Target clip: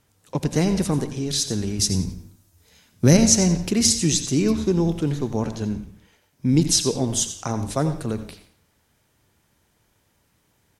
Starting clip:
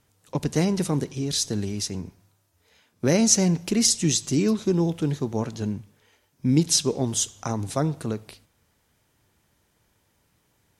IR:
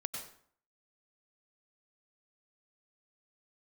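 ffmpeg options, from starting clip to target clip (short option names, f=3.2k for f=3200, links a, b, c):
-filter_complex "[0:a]asettb=1/sr,asplit=3[a][b][c];[a]atrim=end=1.794[d];[b]atrim=start=1.79:end=3.17,asetpts=PTS-STARTPTS,afade=t=in:d=0.004:c=qsin,afade=t=out:st=1.376:d=0.004:c=qsin,bass=f=250:g=10,treble=f=4k:g=8[e];[c]atrim=start=3.166[f];[d][e]acrossfade=d=0.004:c1=hsin:c2=qsin[g];[g][f]acrossfade=d=0.004:c1=qsin:c2=hsin,asplit=4[h][i][j][k];[i]adelay=88,afreqshift=-140,volume=-15dB[l];[j]adelay=176,afreqshift=-280,volume=-24.4dB[m];[k]adelay=264,afreqshift=-420,volume=-33.7dB[n];[h][l][m][n]amix=inputs=4:normalize=0,asplit=2[o][p];[1:a]atrim=start_sample=2205,asetrate=52920,aresample=44100[q];[p][q]afir=irnorm=-1:irlink=0,volume=-2.5dB[r];[o][r]amix=inputs=2:normalize=0,volume=-2dB"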